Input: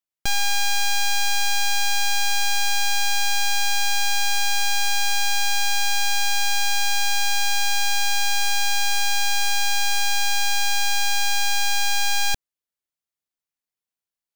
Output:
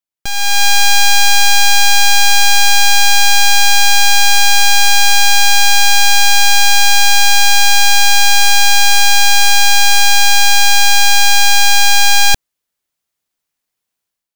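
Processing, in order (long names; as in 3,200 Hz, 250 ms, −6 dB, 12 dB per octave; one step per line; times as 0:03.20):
automatic gain control gain up to 12.5 dB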